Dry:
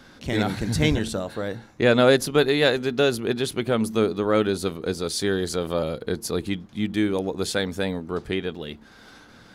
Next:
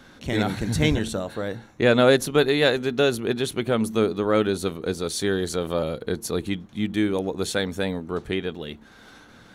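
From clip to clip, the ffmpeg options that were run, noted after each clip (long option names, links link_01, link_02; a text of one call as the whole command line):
ffmpeg -i in.wav -af "bandreject=frequency=4900:width=7.6" out.wav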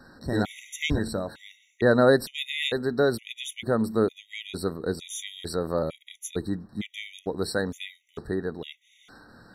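ffmpeg -i in.wav -af "afftfilt=real='re*gt(sin(2*PI*1.1*pts/sr)*(1-2*mod(floor(b*sr/1024/1900),2)),0)':imag='im*gt(sin(2*PI*1.1*pts/sr)*(1-2*mod(floor(b*sr/1024/1900),2)),0)':win_size=1024:overlap=0.75,volume=-1.5dB" out.wav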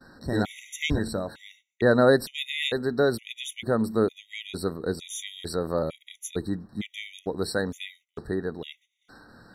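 ffmpeg -i in.wav -af "agate=range=-20dB:threshold=-55dB:ratio=16:detection=peak" out.wav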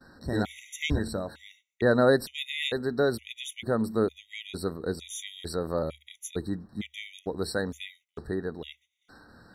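ffmpeg -i in.wav -af "equalizer=frequency=73:width=6.3:gain=8.5,volume=-2.5dB" out.wav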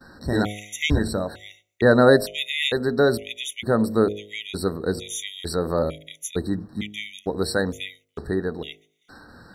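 ffmpeg -i in.wav -af "bandreject=frequency=51.92:width_type=h:width=4,bandreject=frequency=103.84:width_type=h:width=4,bandreject=frequency=155.76:width_type=h:width=4,bandreject=frequency=207.68:width_type=h:width=4,bandreject=frequency=259.6:width_type=h:width=4,bandreject=frequency=311.52:width_type=h:width=4,bandreject=frequency=363.44:width_type=h:width=4,bandreject=frequency=415.36:width_type=h:width=4,bandreject=frequency=467.28:width_type=h:width=4,bandreject=frequency=519.2:width_type=h:width=4,bandreject=frequency=571.12:width_type=h:width=4,bandreject=frequency=623.04:width_type=h:width=4,bandreject=frequency=674.96:width_type=h:width=4,bandreject=frequency=726.88:width_type=h:width=4,volume=7dB" out.wav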